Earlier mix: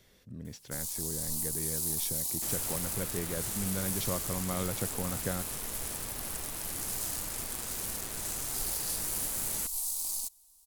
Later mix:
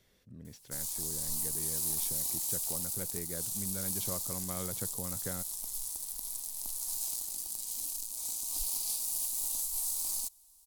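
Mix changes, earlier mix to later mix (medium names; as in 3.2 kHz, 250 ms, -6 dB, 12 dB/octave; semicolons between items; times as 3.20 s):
speech -6.0 dB; second sound: muted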